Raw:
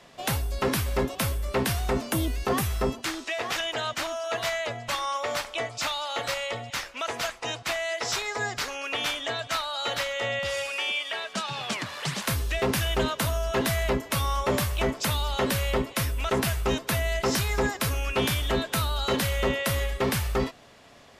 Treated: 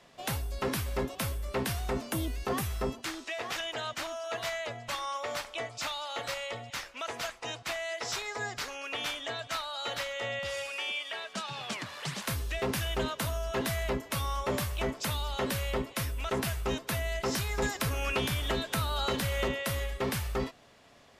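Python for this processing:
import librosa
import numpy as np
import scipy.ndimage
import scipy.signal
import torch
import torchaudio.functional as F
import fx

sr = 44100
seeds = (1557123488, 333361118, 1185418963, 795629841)

y = fx.band_squash(x, sr, depth_pct=100, at=(17.62, 19.48))
y = y * librosa.db_to_amplitude(-6.0)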